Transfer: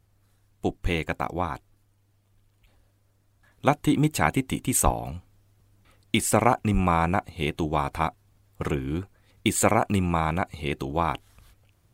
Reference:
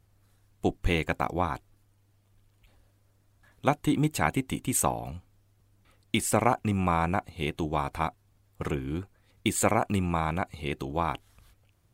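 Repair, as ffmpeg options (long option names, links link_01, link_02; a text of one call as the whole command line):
ffmpeg -i in.wav -filter_complex "[0:a]asplit=3[link_01][link_02][link_03];[link_01]afade=type=out:start_time=4.84:duration=0.02[link_04];[link_02]highpass=frequency=140:width=0.5412,highpass=frequency=140:width=1.3066,afade=type=in:start_time=4.84:duration=0.02,afade=type=out:start_time=4.96:duration=0.02[link_05];[link_03]afade=type=in:start_time=4.96:duration=0.02[link_06];[link_04][link_05][link_06]amix=inputs=3:normalize=0,asplit=3[link_07][link_08][link_09];[link_07]afade=type=out:start_time=6.73:duration=0.02[link_10];[link_08]highpass=frequency=140:width=0.5412,highpass=frequency=140:width=1.3066,afade=type=in:start_time=6.73:duration=0.02,afade=type=out:start_time=6.85:duration=0.02[link_11];[link_09]afade=type=in:start_time=6.85:duration=0.02[link_12];[link_10][link_11][link_12]amix=inputs=3:normalize=0,asetnsamples=nb_out_samples=441:pad=0,asendcmd='3.6 volume volume -3.5dB',volume=0dB" out.wav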